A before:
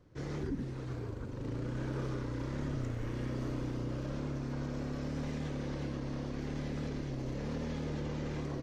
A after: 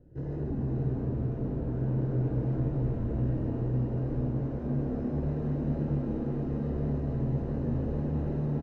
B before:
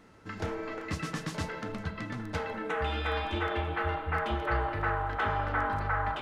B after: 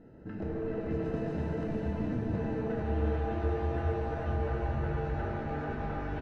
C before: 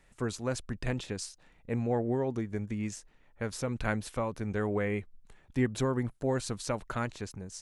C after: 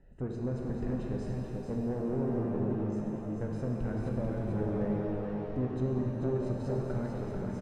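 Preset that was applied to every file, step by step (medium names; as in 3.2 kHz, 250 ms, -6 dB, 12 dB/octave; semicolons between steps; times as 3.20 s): compression, threshold -34 dBFS; boxcar filter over 39 samples; saturation -35 dBFS; on a send: delay 440 ms -5 dB; on the sum: pitch-shifted reverb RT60 3.2 s, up +7 st, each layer -8 dB, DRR -1 dB; trim +5.5 dB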